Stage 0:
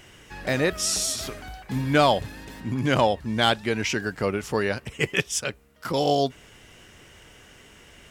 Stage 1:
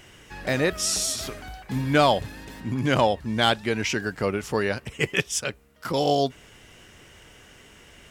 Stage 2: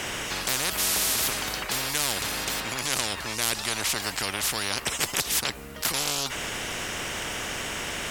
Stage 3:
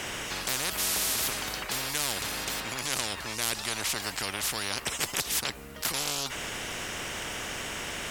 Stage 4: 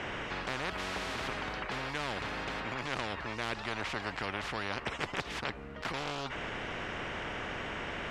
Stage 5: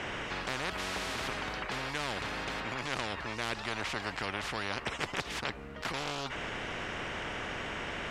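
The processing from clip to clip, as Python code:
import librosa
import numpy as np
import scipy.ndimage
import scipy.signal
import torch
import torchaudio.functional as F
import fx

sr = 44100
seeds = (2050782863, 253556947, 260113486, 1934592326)

y1 = x
y2 = fx.spectral_comp(y1, sr, ratio=10.0)
y3 = fx.dmg_noise_colour(y2, sr, seeds[0], colour='blue', level_db=-67.0)
y3 = F.gain(torch.from_numpy(y3), -3.5).numpy()
y4 = scipy.signal.sosfilt(scipy.signal.butter(2, 2200.0, 'lowpass', fs=sr, output='sos'), y3)
y5 = fx.high_shelf(y4, sr, hz=5500.0, db=8.0)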